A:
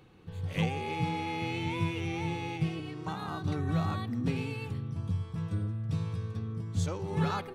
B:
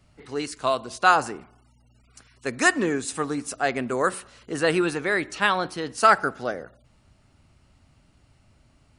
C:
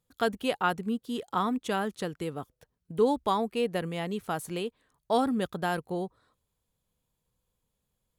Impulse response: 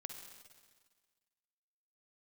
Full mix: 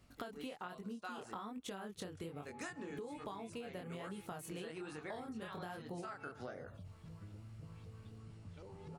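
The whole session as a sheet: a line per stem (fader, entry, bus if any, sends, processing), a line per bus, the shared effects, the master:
-17.5 dB, 1.70 s, no bus, no send, compression, threshold -31 dBFS, peak gain reduction 7.5 dB; LFO low-pass saw up 3.9 Hz 420–5600 Hz
-1.0 dB, 0.00 s, bus A, no send, auto duck -11 dB, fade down 0.30 s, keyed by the third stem
+1.5 dB, 0.00 s, bus A, no send, none
bus A: 0.0 dB, chorus 1.2 Hz, delay 20 ms, depth 7.4 ms; compression, threshold -33 dBFS, peak gain reduction 12.5 dB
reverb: none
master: compression, threshold -43 dBFS, peak gain reduction 12 dB

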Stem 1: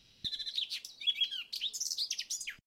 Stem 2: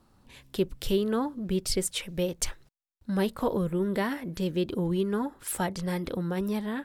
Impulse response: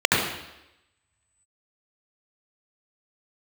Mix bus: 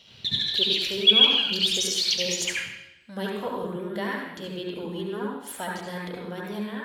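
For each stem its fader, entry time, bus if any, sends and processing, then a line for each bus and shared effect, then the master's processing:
-1.0 dB, 0.00 s, send -5 dB, none
-6.5 dB, 0.00 s, send -13 dB, bass shelf 400 Hz -11.5 dB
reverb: on, RT60 0.90 s, pre-delay 69 ms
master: high-pass 44 Hz

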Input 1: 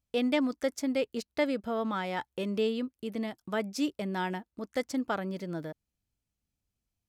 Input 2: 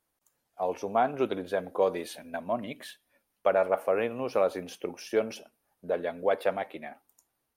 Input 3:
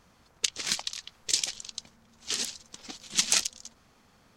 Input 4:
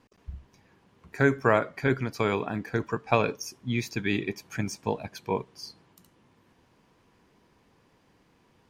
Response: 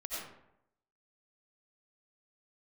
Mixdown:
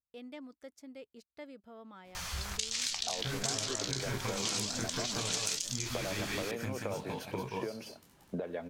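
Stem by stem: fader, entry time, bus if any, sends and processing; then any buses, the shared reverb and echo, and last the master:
-19.5 dB, 0.00 s, no bus, no send, no echo send, none
-7.5 dB, 2.50 s, bus A, no send, no echo send, low-pass 4.3 kHz; three bands compressed up and down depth 100%
0.0 dB, 2.15 s, no bus, no send, no echo send, flange 1.4 Hz, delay 9.5 ms, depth 7.9 ms, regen +61%; amplifier tone stack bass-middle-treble 10-0-10; level flattener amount 70%
-2.0 dB, 2.05 s, bus A, no send, echo send -3.5 dB, formants flattened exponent 0.6; peak limiter -16.5 dBFS, peak gain reduction 10 dB; detune thickener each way 33 cents
bus A: 0.0 dB, bass shelf 200 Hz +8 dB; compression 3:1, threshold -33 dBFS, peak gain reduction 7 dB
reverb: none
echo: delay 180 ms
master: compression 3:1, threshold -32 dBFS, peak gain reduction 7.5 dB

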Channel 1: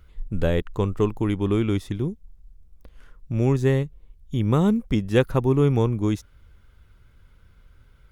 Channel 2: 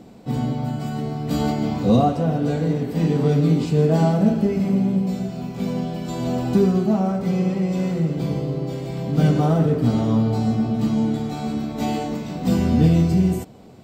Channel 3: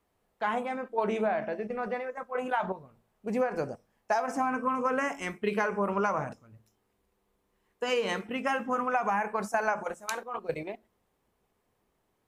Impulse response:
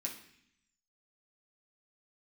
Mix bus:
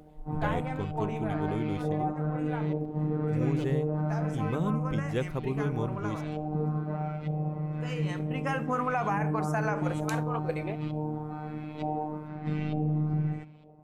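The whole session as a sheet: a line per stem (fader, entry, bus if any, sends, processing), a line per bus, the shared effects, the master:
-12.0 dB, 0.00 s, no bus, no send, none
-9.5 dB, 0.00 s, bus A, send -12 dB, band-stop 2.8 kHz, Q 16; LFO low-pass saw up 1.1 Hz 610–3100 Hz; robot voice 152 Hz
+0.5 dB, 0.00 s, bus A, send -21 dB, auto duck -12 dB, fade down 1.55 s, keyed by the first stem
bus A: 0.0 dB, bass shelf 120 Hz +6.5 dB; peak limiter -18.5 dBFS, peak gain reduction 8 dB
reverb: on, RT60 0.65 s, pre-delay 4 ms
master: none

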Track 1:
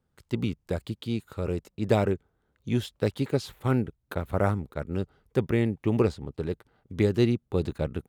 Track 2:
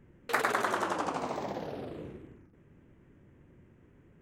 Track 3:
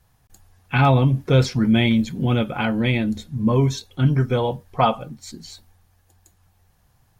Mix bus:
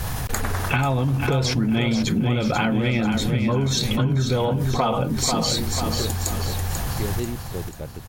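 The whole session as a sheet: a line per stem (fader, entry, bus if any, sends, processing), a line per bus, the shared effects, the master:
-6.0 dB, 0.00 s, no send, no echo send, none
-1.5 dB, 0.00 s, no send, no echo send, none
0.0 dB, 0.00 s, no send, echo send -7 dB, level flattener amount 70%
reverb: none
echo: feedback delay 490 ms, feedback 43%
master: compression, threshold -18 dBFS, peak gain reduction 9.5 dB

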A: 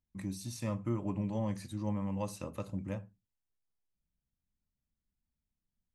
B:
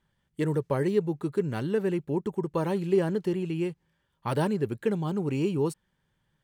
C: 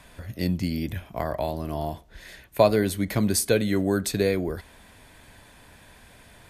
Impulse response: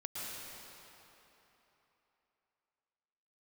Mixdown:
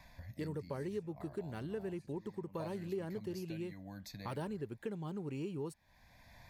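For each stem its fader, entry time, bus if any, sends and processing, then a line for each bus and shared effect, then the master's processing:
-10.5 dB, 0.40 s, no send, peak limiter -35.5 dBFS, peak gain reduction 12.5 dB
-4.0 dB, 0.00 s, no send, none
-5.0 dB, 0.00 s, no send, static phaser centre 2 kHz, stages 8; auto duck -11 dB, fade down 0.65 s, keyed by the second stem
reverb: none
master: compression 2:1, threshold -46 dBFS, peak gain reduction 12.5 dB

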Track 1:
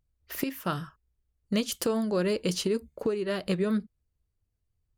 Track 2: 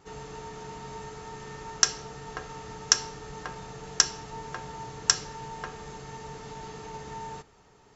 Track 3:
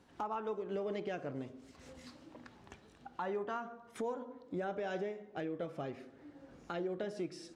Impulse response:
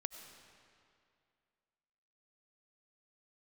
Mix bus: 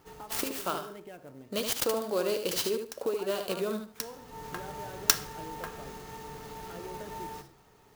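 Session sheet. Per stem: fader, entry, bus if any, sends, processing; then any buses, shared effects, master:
+1.5 dB, 0.00 s, no send, echo send -6.5 dB, high-pass 450 Hz 12 dB/octave; peaking EQ 1.9 kHz -11.5 dB 0.56 oct
-1.5 dB, 0.00 s, no send, no echo send, de-hum 68.35 Hz, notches 35; auto duck -23 dB, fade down 0.60 s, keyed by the first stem
-7.0 dB, 0.00 s, no send, no echo send, none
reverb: none
echo: feedback delay 74 ms, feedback 23%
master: treble shelf 11 kHz +9.5 dB; sampling jitter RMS 0.029 ms

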